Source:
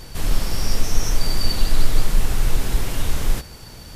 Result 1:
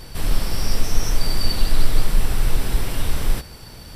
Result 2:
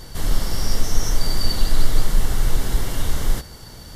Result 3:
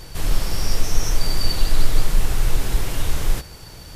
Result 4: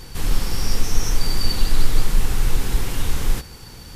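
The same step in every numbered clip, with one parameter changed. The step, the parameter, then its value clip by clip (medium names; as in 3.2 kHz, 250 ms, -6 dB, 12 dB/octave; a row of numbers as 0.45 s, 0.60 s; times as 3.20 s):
band-stop, frequency: 6.7 kHz, 2.5 kHz, 230 Hz, 630 Hz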